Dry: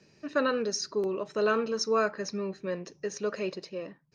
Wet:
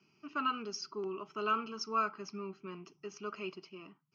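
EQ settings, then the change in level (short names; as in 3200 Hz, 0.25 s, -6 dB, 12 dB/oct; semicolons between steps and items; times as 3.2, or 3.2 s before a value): speaker cabinet 160–5200 Hz, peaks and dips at 390 Hz +6 dB, 1300 Hz +8 dB, 3100 Hz +7 dB; dynamic EQ 3900 Hz, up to +3 dB, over -39 dBFS, Q 0.98; fixed phaser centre 2600 Hz, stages 8; -6.0 dB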